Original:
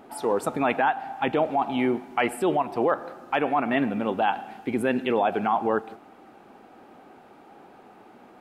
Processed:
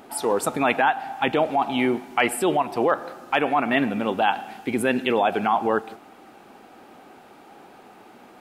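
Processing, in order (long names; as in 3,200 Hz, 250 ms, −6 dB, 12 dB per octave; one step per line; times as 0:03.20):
high-shelf EQ 2,500 Hz +9 dB
level +1.5 dB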